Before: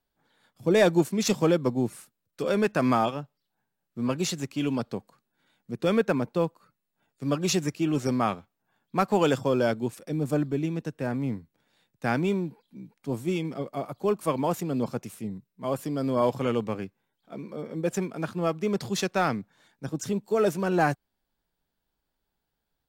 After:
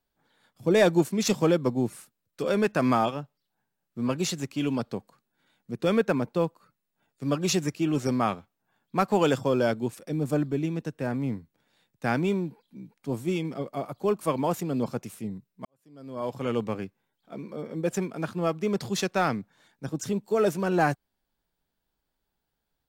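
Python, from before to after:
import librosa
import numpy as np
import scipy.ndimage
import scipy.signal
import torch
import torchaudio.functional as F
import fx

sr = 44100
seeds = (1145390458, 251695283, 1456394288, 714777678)

y = fx.edit(x, sr, fx.fade_in_span(start_s=15.65, length_s=0.95, curve='qua'), tone=tone)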